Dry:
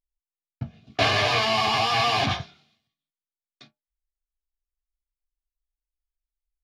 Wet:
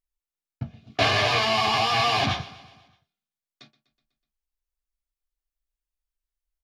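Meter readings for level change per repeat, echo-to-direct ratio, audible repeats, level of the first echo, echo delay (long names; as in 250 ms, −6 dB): −4.5 dB, −17.0 dB, 4, −19.0 dB, 124 ms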